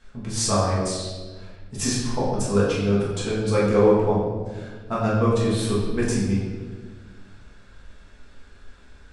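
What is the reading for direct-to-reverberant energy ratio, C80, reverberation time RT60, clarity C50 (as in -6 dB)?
-8.0 dB, 3.0 dB, 1.5 s, 1.0 dB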